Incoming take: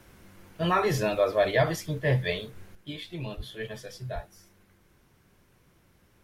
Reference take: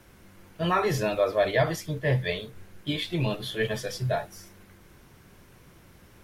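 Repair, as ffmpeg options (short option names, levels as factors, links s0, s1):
-filter_complex "[0:a]asplit=3[s0][s1][s2];[s0]afade=t=out:st=3.36:d=0.02[s3];[s1]highpass=f=140:w=0.5412,highpass=f=140:w=1.3066,afade=t=in:st=3.36:d=0.02,afade=t=out:st=3.48:d=0.02[s4];[s2]afade=t=in:st=3.48:d=0.02[s5];[s3][s4][s5]amix=inputs=3:normalize=0,asplit=3[s6][s7][s8];[s6]afade=t=out:st=4.14:d=0.02[s9];[s7]highpass=f=140:w=0.5412,highpass=f=140:w=1.3066,afade=t=in:st=4.14:d=0.02,afade=t=out:st=4.26:d=0.02[s10];[s8]afade=t=in:st=4.26:d=0.02[s11];[s9][s10][s11]amix=inputs=3:normalize=0,asetnsamples=n=441:p=0,asendcmd='2.75 volume volume 9dB',volume=1"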